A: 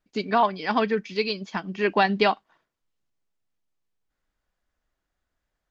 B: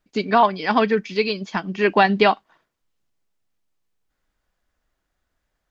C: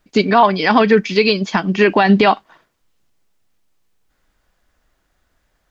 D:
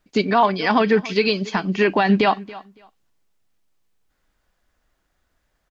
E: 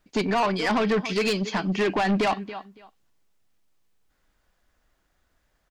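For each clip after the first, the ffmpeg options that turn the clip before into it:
ffmpeg -i in.wav -filter_complex "[0:a]acrossover=split=4100[link_01][link_02];[link_02]acompressor=threshold=-41dB:ratio=4:attack=1:release=60[link_03];[link_01][link_03]amix=inputs=2:normalize=0,volume=5dB" out.wav
ffmpeg -i in.wav -af "alimiter=level_in=11.5dB:limit=-1dB:release=50:level=0:latency=1,volume=-1dB" out.wav
ffmpeg -i in.wav -af "aecho=1:1:280|560:0.112|0.0213,volume=-5dB" out.wav
ffmpeg -i in.wav -af "asoftclip=type=tanh:threshold=-19dB" out.wav

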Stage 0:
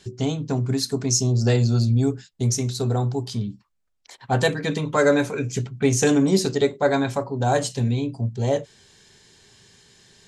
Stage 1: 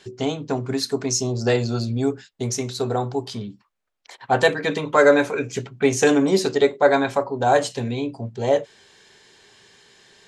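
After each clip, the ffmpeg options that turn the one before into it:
ffmpeg -i in.wav -af "bass=frequency=250:gain=-13,treble=frequency=4000:gain=-8,volume=5dB" out.wav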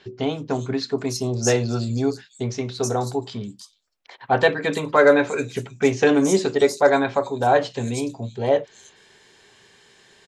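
ffmpeg -i in.wav -filter_complex "[0:a]acrossover=split=5000[link_01][link_02];[link_02]adelay=320[link_03];[link_01][link_03]amix=inputs=2:normalize=0" out.wav

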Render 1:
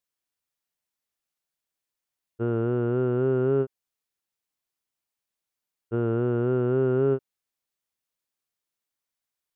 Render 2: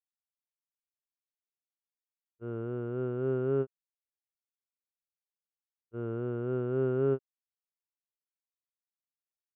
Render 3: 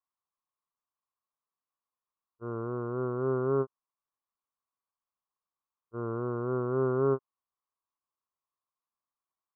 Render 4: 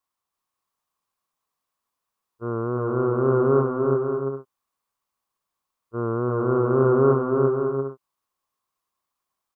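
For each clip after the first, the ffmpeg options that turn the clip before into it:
ffmpeg -i in.wav -af "agate=range=-33dB:threshold=-16dB:ratio=3:detection=peak" out.wav
ffmpeg -i in.wav -af "lowpass=frequency=1100:width_type=q:width=7.4" out.wav
ffmpeg -i in.wav -af "aecho=1:1:340|544|666.4|739.8|783.9:0.631|0.398|0.251|0.158|0.1,volume=8.5dB" out.wav

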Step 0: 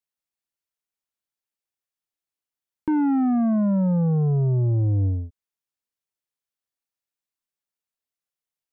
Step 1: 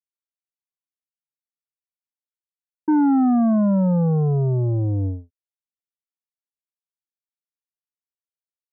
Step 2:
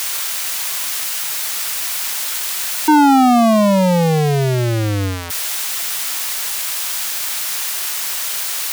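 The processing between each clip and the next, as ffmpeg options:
ffmpeg -i in.wav -af "lowpass=frequency=1500:width=0.5412,lowpass=frequency=1500:width=1.3066,lowshelf=frequency=110:gain=-12,agate=range=-33dB:threshold=-25dB:ratio=3:detection=peak,volume=5.5dB" out.wav
ffmpeg -i in.wav -filter_complex "[0:a]aeval=exprs='val(0)+0.5*0.0398*sgn(val(0))':channel_layout=same,tiltshelf=frequency=630:gain=-5.5,acrossover=split=530[link_01][link_02];[link_02]acontrast=73[link_03];[link_01][link_03]amix=inputs=2:normalize=0,volume=6dB" out.wav

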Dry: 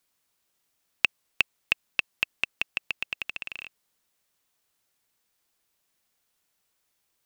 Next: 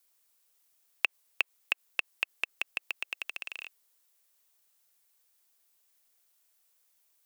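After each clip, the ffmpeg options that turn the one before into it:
ffmpeg -i in.wav -filter_complex "[0:a]highpass=frequency=330:width=0.5412,highpass=frequency=330:width=1.3066,acrossover=split=3000[link_01][link_02];[link_02]acompressor=threshold=-38dB:ratio=4:attack=1:release=60[link_03];[link_01][link_03]amix=inputs=2:normalize=0,highshelf=frequency=6800:gain=10.5,volume=-3dB" out.wav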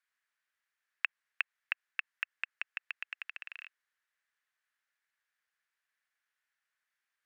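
ffmpeg -i in.wav -af "bandpass=frequency=1700:width_type=q:width=3.8:csg=0,volume=5dB" out.wav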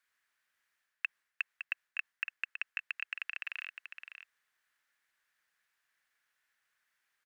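ffmpeg -i in.wav -af "areverse,acompressor=threshold=-38dB:ratio=6,areverse,aecho=1:1:561:0.376,volume=5.5dB" out.wav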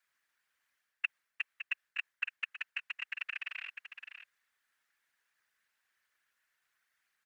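ffmpeg -i in.wav -af "afftfilt=real='hypot(re,im)*cos(2*PI*random(0))':imag='hypot(re,im)*sin(2*PI*random(1))':win_size=512:overlap=0.75,volume=6dB" out.wav

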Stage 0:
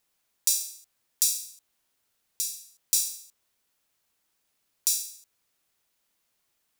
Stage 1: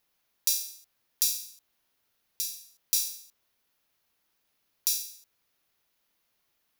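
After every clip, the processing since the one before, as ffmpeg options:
ffmpeg -i in.wav -af "equalizer=frequency=8100:width_type=o:width=0.52:gain=-10,volume=1dB" out.wav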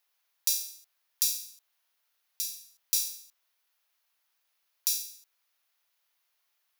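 ffmpeg -i in.wav -af "highpass=750,volume=-1dB" out.wav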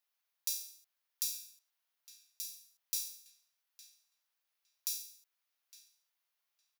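ffmpeg -i in.wav -filter_complex "[0:a]asplit=2[link_01][link_02];[link_02]adelay=860,lowpass=frequency=2600:poles=1,volume=-12dB,asplit=2[link_03][link_04];[link_04]adelay=860,lowpass=frequency=2600:poles=1,volume=0.21,asplit=2[link_05][link_06];[link_06]adelay=860,lowpass=frequency=2600:poles=1,volume=0.21[link_07];[link_01][link_03][link_05][link_07]amix=inputs=4:normalize=0,volume=-9dB" out.wav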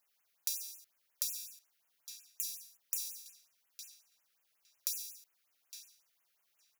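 ffmpeg -i in.wav -af "acompressor=threshold=-41dB:ratio=4,afftfilt=real='re*(1-between(b*sr/1024,800*pow(4600/800,0.5+0.5*sin(2*PI*5.5*pts/sr))/1.41,800*pow(4600/800,0.5+0.5*sin(2*PI*5.5*pts/sr))*1.41))':imag='im*(1-between(b*sr/1024,800*pow(4600/800,0.5+0.5*sin(2*PI*5.5*pts/sr))/1.41,800*pow(4600/800,0.5+0.5*sin(2*PI*5.5*pts/sr))*1.41))':win_size=1024:overlap=0.75,volume=8dB" out.wav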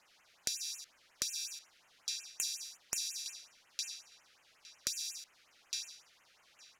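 ffmpeg -i in.wav -af "lowpass=5300,acompressor=threshold=-51dB:ratio=8,volume=17.5dB" out.wav

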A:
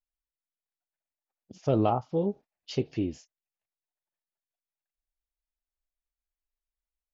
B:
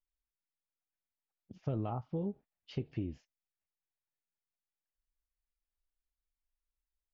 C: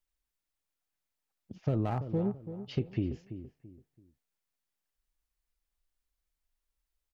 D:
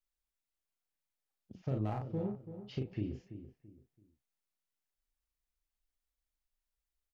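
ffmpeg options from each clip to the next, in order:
ffmpeg -i in.wav -af "lowpass=1800,equalizer=frequency=600:width=0.4:gain=-11.5,acompressor=threshold=-35dB:ratio=6,volume=3dB" out.wav
ffmpeg -i in.wav -filter_complex "[0:a]acrossover=split=490[link_01][link_02];[link_02]aeval=exprs='clip(val(0),-1,0.0075)':channel_layout=same[link_03];[link_01][link_03]amix=inputs=2:normalize=0,asplit=2[link_04][link_05];[link_05]adelay=334,lowpass=frequency=1400:poles=1,volume=-11dB,asplit=2[link_06][link_07];[link_07]adelay=334,lowpass=frequency=1400:poles=1,volume=0.32,asplit=2[link_08][link_09];[link_09]adelay=334,lowpass=frequency=1400:poles=1,volume=0.32[link_10];[link_04][link_06][link_08][link_10]amix=inputs=4:normalize=0,volume=5.5dB" out.wav
ffmpeg -i in.wav -filter_complex "[0:a]asplit=2[link_01][link_02];[link_02]adelay=38,volume=-3.5dB[link_03];[link_01][link_03]amix=inputs=2:normalize=0,volume=-7dB" out.wav

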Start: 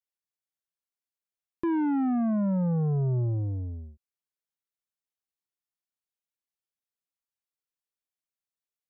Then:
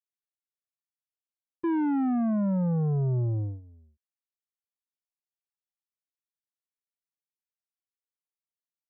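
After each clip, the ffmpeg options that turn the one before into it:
ffmpeg -i in.wav -af "agate=range=-16dB:threshold=-31dB:ratio=16:detection=peak" out.wav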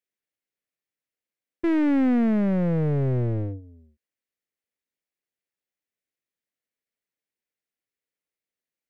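ffmpeg -i in.wav -af "aeval=exprs='clip(val(0),-1,0.0141)':channel_layout=same,equalizer=frequency=125:width_type=o:width=1:gain=4,equalizer=frequency=250:width_type=o:width=1:gain=7,equalizer=frequency=500:width_type=o:width=1:gain=10,equalizer=frequency=1000:width_type=o:width=1:gain=-5,equalizer=frequency=2000:width_type=o:width=1:gain=10" out.wav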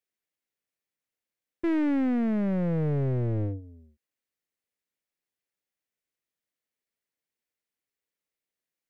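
ffmpeg -i in.wav -af "alimiter=limit=-20dB:level=0:latency=1" out.wav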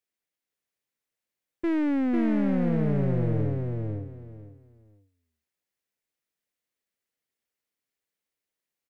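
ffmpeg -i in.wav -af "aecho=1:1:497|994|1491:0.668|0.147|0.0323" out.wav

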